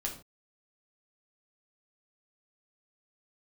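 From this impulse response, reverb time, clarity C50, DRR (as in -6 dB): no single decay rate, 8.5 dB, -1.5 dB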